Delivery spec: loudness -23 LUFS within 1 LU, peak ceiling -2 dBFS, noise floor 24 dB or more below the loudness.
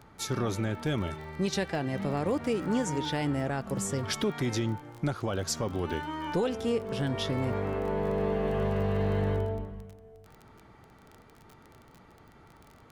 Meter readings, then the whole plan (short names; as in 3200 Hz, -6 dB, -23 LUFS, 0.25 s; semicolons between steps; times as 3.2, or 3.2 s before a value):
ticks 24/s; loudness -31.0 LUFS; peak -18.5 dBFS; loudness target -23.0 LUFS
-> de-click; gain +8 dB